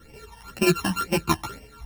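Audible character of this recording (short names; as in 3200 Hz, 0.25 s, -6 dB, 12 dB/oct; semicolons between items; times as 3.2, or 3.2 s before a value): a buzz of ramps at a fixed pitch in blocks of 32 samples; phasing stages 12, 2 Hz, lowest notch 410–1300 Hz; tremolo saw up 1.9 Hz, depth 30%; a shimmering, thickened sound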